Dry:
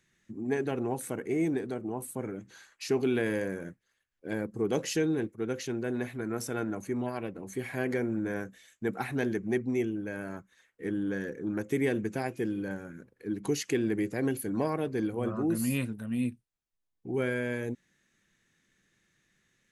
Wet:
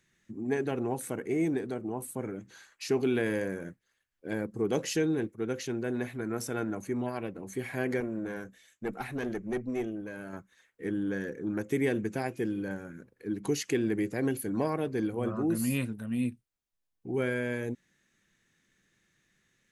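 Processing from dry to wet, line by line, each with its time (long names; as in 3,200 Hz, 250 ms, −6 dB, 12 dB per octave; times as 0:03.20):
0:08.00–0:10.33: tube saturation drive 23 dB, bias 0.6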